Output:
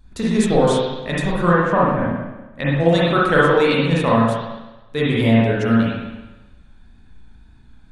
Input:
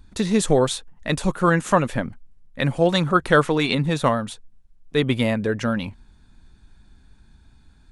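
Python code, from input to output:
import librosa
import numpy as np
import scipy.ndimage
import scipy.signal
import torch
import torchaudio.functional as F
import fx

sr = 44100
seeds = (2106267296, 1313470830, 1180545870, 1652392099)

y = fx.wow_flutter(x, sr, seeds[0], rate_hz=2.1, depth_cents=39.0)
y = fx.env_lowpass_down(y, sr, base_hz=1500.0, full_db=-17.5, at=(1.52, 2.8))
y = fx.rev_spring(y, sr, rt60_s=1.1, pass_ms=(35, 53, 57), chirp_ms=70, drr_db=-6.5)
y = F.gain(torch.from_numpy(y), -3.5).numpy()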